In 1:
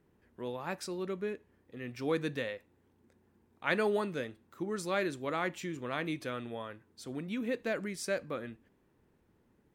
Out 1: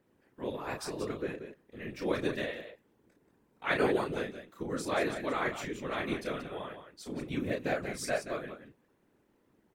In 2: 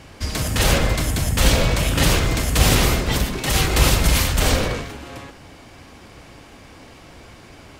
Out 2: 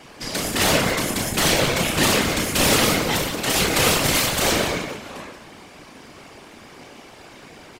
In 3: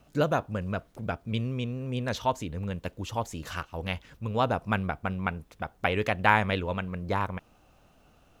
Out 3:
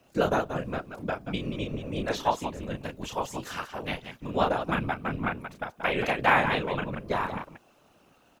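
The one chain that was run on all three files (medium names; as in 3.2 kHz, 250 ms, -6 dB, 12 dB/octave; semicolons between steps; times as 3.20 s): high-pass 170 Hz 12 dB/octave; loudspeakers at several distances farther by 11 m -5 dB, 62 m -9 dB; whisper effect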